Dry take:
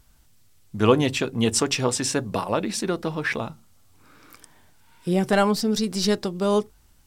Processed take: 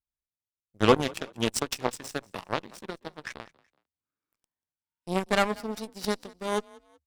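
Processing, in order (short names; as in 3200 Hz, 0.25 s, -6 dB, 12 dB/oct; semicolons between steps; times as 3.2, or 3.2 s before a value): added harmonics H 4 -29 dB, 7 -17 dB, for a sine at -4 dBFS; frequency-shifting echo 0.188 s, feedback 34%, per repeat +35 Hz, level -23 dB; gain -2 dB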